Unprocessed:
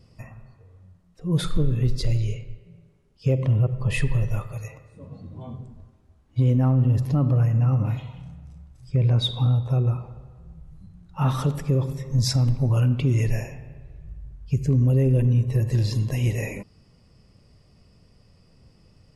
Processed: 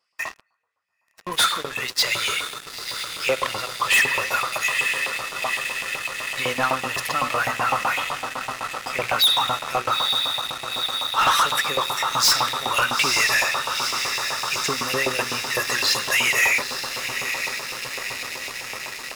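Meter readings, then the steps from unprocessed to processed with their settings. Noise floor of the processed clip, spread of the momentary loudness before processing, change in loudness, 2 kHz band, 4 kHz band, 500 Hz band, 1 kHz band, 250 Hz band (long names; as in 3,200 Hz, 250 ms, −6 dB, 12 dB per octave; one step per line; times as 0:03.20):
−67 dBFS, 20 LU, +1.5 dB, +20.5 dB, +15.5 dB, +2.5 dB, +17.0 dB, −10.5 dB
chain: feedback delay with all-pass diffusion 916 ms, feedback 77%, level −10.5 dB
auto-filter high-pass saw up 7.9 Hz 900–2,500 Hz
leveller curve on the samples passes 5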